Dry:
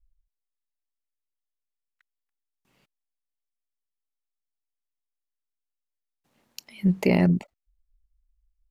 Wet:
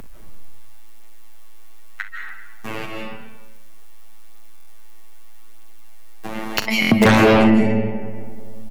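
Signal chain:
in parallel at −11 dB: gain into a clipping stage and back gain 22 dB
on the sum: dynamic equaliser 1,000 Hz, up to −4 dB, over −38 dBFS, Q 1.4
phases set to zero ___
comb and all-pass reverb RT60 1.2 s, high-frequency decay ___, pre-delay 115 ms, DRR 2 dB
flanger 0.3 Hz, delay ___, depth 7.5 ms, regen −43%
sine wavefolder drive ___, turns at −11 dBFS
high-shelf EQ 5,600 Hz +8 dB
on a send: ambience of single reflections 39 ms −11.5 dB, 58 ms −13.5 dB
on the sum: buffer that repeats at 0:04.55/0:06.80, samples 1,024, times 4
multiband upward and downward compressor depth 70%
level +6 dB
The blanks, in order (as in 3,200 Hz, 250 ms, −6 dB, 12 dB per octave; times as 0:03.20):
110 Hz, 0.6×, 4.4 ms, 16 dB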